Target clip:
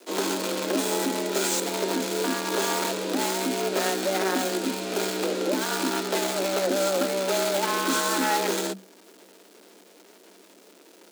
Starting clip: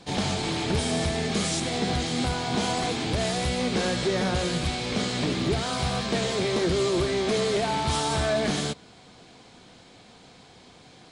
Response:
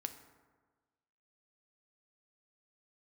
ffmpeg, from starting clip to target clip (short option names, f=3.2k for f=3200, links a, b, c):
-filter_complex "[0:a]superequalizer=10b=2:15b=1.78,acrossover=split=470[a][b];[b]acrusher=bits=5:dc=4:mix=0:aa=0.000001[c];[a][c]amix=inputs=2:normalize=0,afreqshift=190"